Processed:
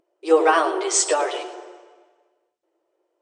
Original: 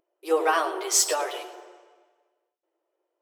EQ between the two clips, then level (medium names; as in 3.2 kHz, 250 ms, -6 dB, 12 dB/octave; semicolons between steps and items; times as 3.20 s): brick-wall FIR low-pass 9.4 kHz; dynamic bell 5.1 kHz, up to -6 dB, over -37 dBFS, Q 1.4; peaking EQ 240 Hz +5 dB 2.1 oct; +4.5 dB